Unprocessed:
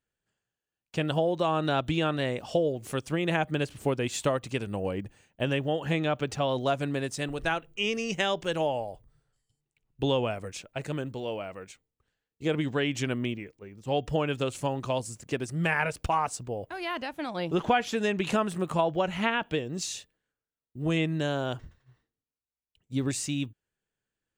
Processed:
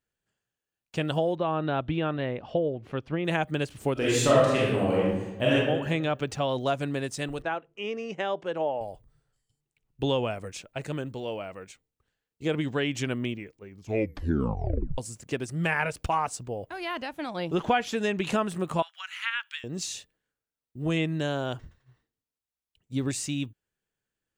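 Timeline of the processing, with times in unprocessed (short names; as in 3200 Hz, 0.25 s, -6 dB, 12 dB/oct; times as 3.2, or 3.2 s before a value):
1.35–3.25 air absorption 340 m
3.93–5.54 reverb throw, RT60 1.1 s, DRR -7 dB
7.42–8.81 band-pass 640 Hz, Q 0.6
13.68 tape stop 1.30 s
18.82–19.64 steep high-pass 1300 Hz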